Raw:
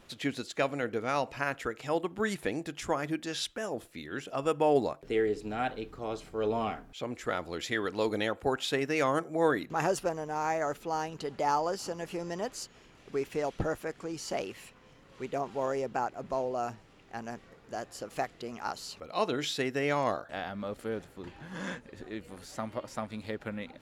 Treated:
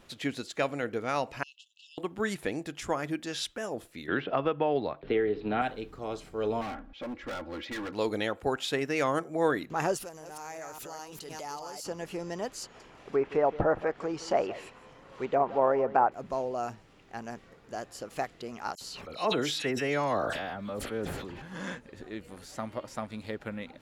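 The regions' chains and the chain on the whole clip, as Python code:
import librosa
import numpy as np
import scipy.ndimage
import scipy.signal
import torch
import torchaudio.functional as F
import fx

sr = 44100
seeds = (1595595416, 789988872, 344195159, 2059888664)

y = fx.chain(x, sr, fx.brickwall_highpass(low_hz=2600.0),
    fx.air_absorb(metres=140.0), at=(1.43, 1.98))
y = fx.chain(y, sr, fx.cheby1_lowpass(hz=3900.0, order=4),
    fx.band_squash(depth_pct=100), at=(4.08, 5.62))
y = fx.chain(y, sr, fx.air_absorb(metres=290.0),
    fx.comb(ms=3.6, depth=0.94),
    fx.overload_stage(gain_db=34.0), at=(6.61, 7.93))
y = fx.chain(y, sr, fx.reverse_delay(ms=204, wet_db=-5.5),
    fx.pre_emphasis(coefficient=0.8),
    fx.pre_swell(db_per_s=21.0), at=(9.97, 11.85))
y = fx.chain(y, sr, fx.env_lowpass_down(base_hz=2000.0, full_db=-29.0),
    fx.peak_eq(hz=810.0, db=9.0, octaves=2.3),
    fx.echo_single(ms=168, db=-16.0), at=(12.63, 16.12))
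y = fx.chain(y, sr, fx.dispersion(late='lows', ms=61.0, hz=2800.0),
    fx.sustainer(db_per_s=30.0), at=(18.75, 21.42))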